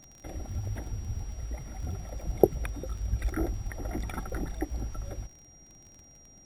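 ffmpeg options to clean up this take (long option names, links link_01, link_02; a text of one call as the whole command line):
ffmpeg -i in.wav -af "adeclick=threshold=4,bandreject=frequency=5700:width=30" out.wav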